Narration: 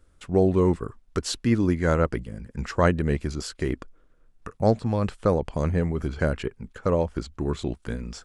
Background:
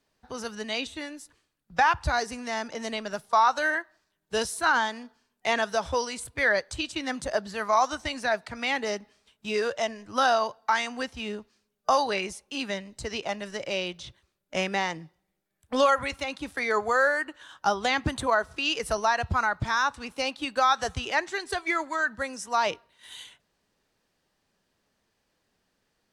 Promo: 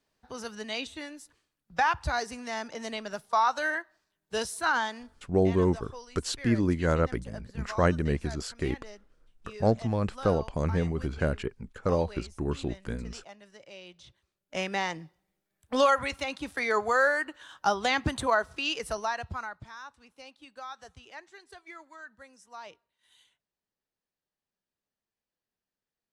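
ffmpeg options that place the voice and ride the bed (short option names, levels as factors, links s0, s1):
-filter_complex "[0:a]adelay=5000,volume=0.668[s0];[1:a]volume=4.47,afade=t=out:st=5.16:d=0.33:silence=0.199526,afade=t=in:st=13.81:d=1.22:silence=0.149624,afade=t=out:st=18.32:d=1.38:silence=0.11885[s1];[s0][s1]amix=inputs=2:normalize=0"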